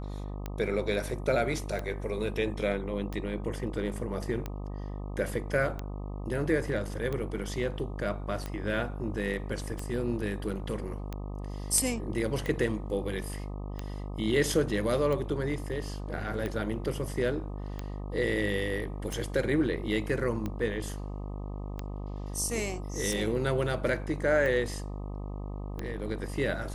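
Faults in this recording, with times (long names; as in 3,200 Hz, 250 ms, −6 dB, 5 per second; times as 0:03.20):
mains buzz 50 Hz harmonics 25 −37 dBFS
scratch tick 45 rpm −21 dBFS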